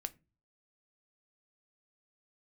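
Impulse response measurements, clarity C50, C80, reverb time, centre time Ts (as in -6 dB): 22.5 dB, 29.0 dB, not exponential, 2 ms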